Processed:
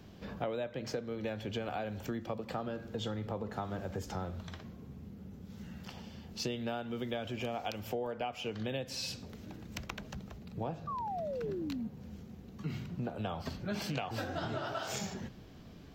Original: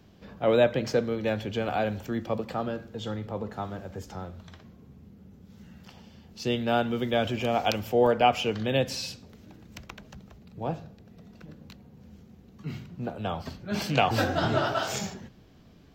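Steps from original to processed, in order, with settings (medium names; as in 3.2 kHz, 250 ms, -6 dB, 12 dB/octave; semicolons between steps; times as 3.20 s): compression 16:1, threshold -36 dBFS, peak gain reduction 21 dB; painted sound fall, 10.87–11.88 s, 210–1200 Hz -40 dBFS; trim +2.5 dB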